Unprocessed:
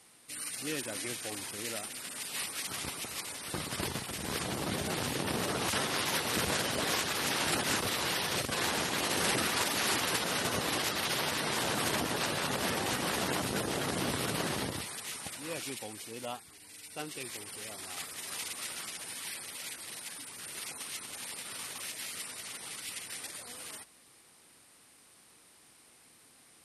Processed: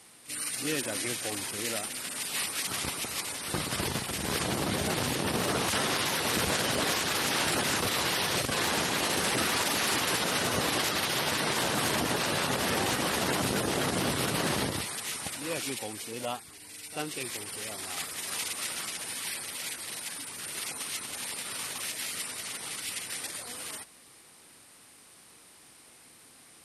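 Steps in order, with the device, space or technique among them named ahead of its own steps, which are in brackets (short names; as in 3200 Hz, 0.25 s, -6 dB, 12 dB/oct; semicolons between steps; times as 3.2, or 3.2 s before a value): reverse echo 40 ms -15 dB; limiter into clipper (limiter -22.5 dBFS, peak gain reduction 7 dB; hard clip -24.5 dBFS, distortion -30 dB); gain +5 dB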